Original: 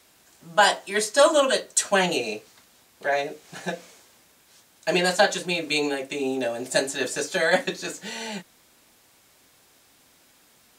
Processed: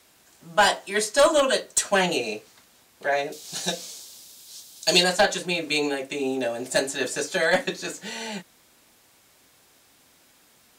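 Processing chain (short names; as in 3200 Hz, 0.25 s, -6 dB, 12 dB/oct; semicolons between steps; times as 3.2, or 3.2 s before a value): one-sided clip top -13.5 dBFS; 3.32–5.04 resonant high shelf 2900 Hz +12 dB, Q 1.5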